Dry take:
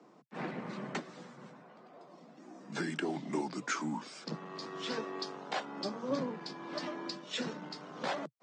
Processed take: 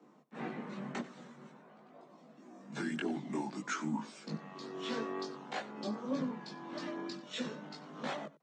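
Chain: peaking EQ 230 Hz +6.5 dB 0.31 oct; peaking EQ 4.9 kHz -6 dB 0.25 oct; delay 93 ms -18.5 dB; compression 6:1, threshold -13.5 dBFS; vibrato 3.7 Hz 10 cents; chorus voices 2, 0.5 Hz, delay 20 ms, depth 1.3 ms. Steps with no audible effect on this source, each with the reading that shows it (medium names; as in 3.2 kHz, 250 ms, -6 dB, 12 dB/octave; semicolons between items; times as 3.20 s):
compression, threshold -13.5 dBFS: peak at its input -21.0 dBFS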